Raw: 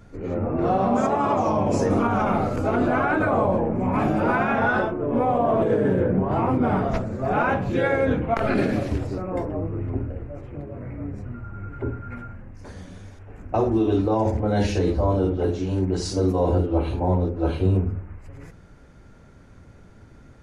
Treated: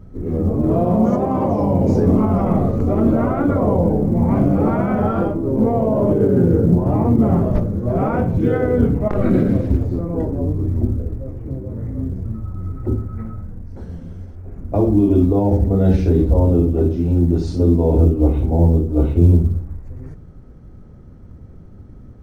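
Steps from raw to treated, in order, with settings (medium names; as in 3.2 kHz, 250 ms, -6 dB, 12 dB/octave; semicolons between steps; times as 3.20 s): tilt shelf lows +9.5 dB, about 790 Hz; short-mantissa float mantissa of 6-bit; speed mistake 48 kHz file played as 44.1 kHz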